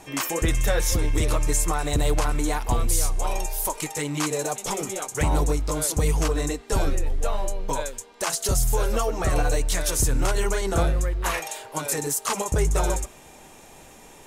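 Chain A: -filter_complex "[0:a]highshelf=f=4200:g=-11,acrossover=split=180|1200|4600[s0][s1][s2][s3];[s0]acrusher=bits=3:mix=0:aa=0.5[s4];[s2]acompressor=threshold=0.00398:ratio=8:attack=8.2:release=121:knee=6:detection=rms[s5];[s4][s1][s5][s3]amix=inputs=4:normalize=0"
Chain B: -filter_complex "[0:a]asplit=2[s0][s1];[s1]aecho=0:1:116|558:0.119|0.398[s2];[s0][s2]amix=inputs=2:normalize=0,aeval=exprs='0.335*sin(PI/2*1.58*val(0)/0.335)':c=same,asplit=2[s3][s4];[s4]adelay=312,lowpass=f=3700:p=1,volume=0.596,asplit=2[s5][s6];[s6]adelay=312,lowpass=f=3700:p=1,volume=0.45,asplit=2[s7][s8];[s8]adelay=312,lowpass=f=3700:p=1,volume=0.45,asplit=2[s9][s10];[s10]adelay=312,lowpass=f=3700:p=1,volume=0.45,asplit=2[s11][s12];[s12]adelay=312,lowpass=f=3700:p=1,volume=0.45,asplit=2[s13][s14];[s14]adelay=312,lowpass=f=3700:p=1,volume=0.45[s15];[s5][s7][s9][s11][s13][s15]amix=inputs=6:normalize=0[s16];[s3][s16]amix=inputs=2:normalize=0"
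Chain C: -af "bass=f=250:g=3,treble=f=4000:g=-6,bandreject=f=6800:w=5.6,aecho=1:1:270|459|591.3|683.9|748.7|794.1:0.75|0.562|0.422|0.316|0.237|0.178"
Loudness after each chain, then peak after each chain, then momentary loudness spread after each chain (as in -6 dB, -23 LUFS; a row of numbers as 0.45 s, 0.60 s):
-26.0 LUFS, -17.0 LUFS, -21.5 LUFS; -10.0 dBFS, -4.0 dBFS, -4.0 dBFS; 10 LU, 5 LU, 7 LU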